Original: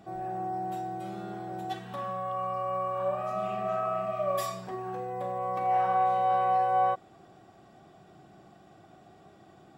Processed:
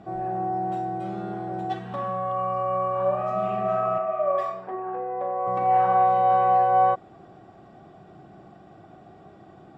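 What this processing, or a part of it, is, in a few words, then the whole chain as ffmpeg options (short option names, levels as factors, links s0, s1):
through cloth: -filter_complex "[0:a]lowpass=8200,highshelf=f=2700:g=-12,asettb=1/sr,asplit=3[s0][s1][s2];[s0]atrim=end=3.984[s3];[s1]atrim=start=3.98:end=5.47,asetpts=PTS-STARTPTS,afade=t=in:d=0.004:c=qsin,afade=t=out:st=1.486:d=0.004:c=qsin,acrossover=split=300 2500:gain=0.141 1 0.158[s4][s5][s6];[s4][s5][s6]amix=inputs=3:normalize=0[s7];[s2]atrim=start=5.466[s8];[s3][s7]acrossfade=d=0.004:c1=hsin:c2=qsin[s9];[s9][s8]acrossfade=d=0.004:c1=qsin:c2=hsin,volume=2.24"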